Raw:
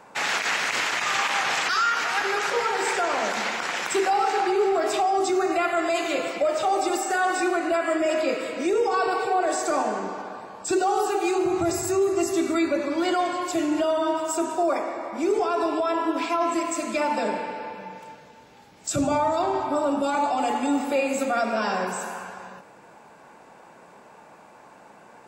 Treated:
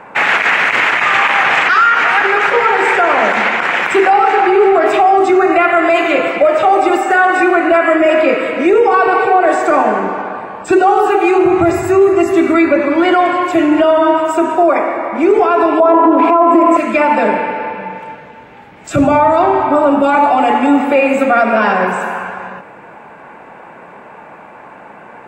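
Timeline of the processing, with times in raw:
0:15.80–0:16.77: flat-topped bell 510 Hz +14.5 dB 2.7 octaves
whole clip: high shelf with overshoot 3,400 Hz −13.5 dB, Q 1.5; boost into a limiter +14 dB; level −1 dB

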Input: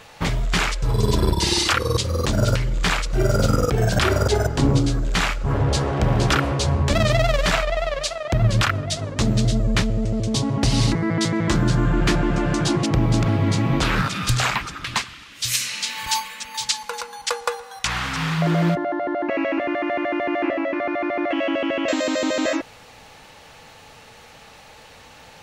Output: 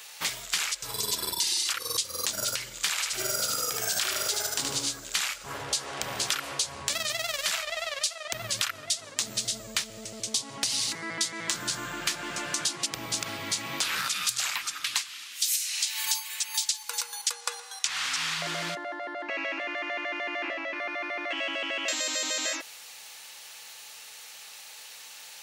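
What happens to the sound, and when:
0:02.90–0:04.91: feedback echo with a high-pass in the loop 75 ms, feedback 48%, level −3.5 dB
0:17.32–0:20.78: low-pass filter 8,600 Hz
whole clip: first difference; downward compressor 10 to 1, threshold −33 dBFS; level +8.5 dB

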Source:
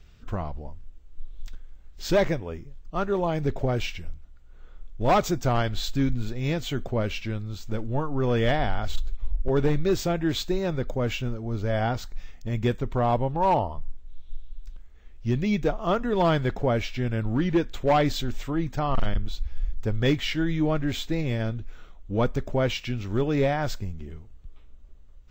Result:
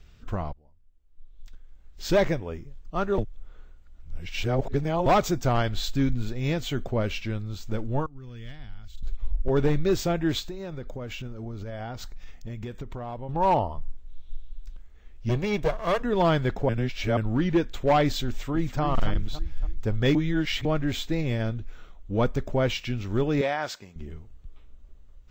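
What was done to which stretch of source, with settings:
0:00.53–0:02.12: fade in quadratic, from −22.5 dB
0:03.18–0:05.06: reverse
0:08.06–0:09.03: guitar amp tone stack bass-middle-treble 6-0-2
0:10.39–0:13.29: downward compressor 12 to 1, threshold −31 dBFS
0:15.29–0:16.03: lower of the sound and its delayed copy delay 1.8 ms
0:16.69–0:17.17: reverse
0:18.26–0:18.82: delay throw 280 ms, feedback 45%, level −7.5 dB
0:20.15–0:20.65: reverse
0:23.41–0:23.96: meter weighting curve A

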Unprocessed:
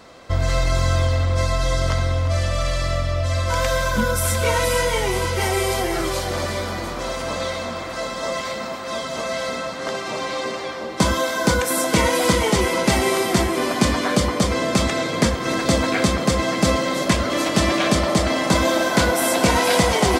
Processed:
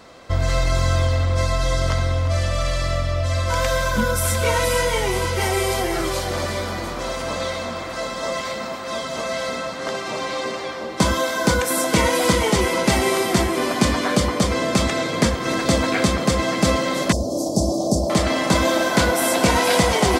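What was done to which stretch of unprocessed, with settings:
0:17.12–0:18.10: elliptic band-stop filter 750–5,200 Hz, stop band 70 dB

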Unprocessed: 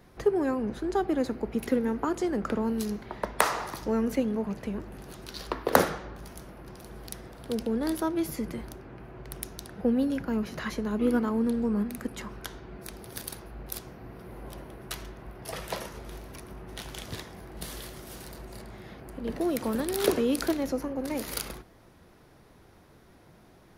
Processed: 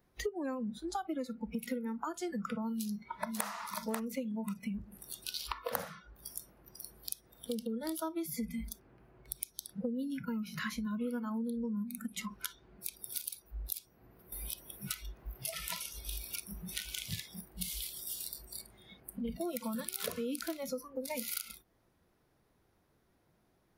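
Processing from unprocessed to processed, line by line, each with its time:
0:02.72–0:03.45: delay throw 540 ms, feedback 20%, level −5.5 dB
0:08.35–0:08.80: comb filter 4.4 ms
0:14.32–0:17.41: multiband upward and downward compressor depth 70%
whole clip: noise reduction from a noise print of the clip's start 23 dB; high-shelf EQ 12,000 Hz +8.5 dB; downward compressor 6 to 1, threshold −42 dBFS; level +6.5 dB

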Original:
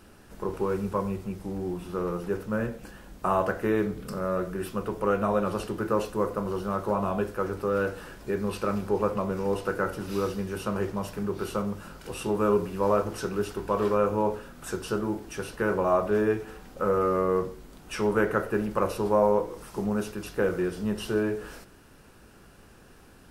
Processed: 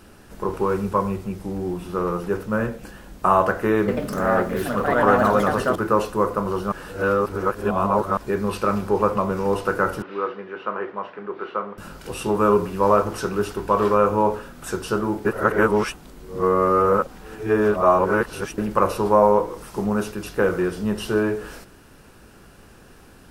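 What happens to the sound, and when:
0:03.79–0:06.02: delay with pitch and tempo change per echo 90 ms, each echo +3 semitones, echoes 2
0:06.72–0:08.17: reverse
0:10.02–0:11.78: loudspeaker in its box 450–2,700 Hz, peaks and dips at 600 Hz −3 dB, 860 Hz −3 dB, 2,600 Hz −4 dB
0:15.25–0:18.58: reverse
whole clip: dynamic equaliser 1,100 Hz, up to +5 dB, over −41 dBFS, Q 1.5; level +5 dB

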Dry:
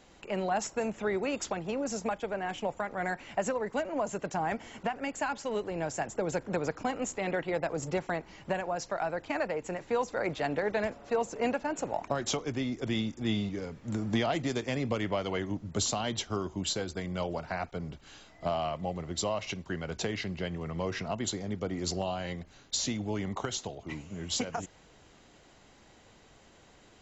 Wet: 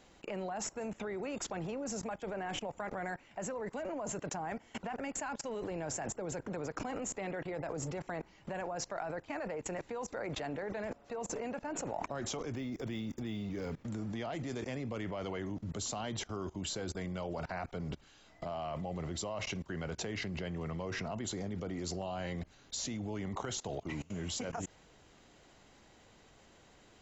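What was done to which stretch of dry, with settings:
0:12.55–0:13.85: linearly interpolated sample-rate reduction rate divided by 2×
whole clip: dynamic equaliser 3,700 Hz, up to −4 dB, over −48 dBFS, Q 1.1; output level in coarse steps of 23 dB; level +7.5 dB

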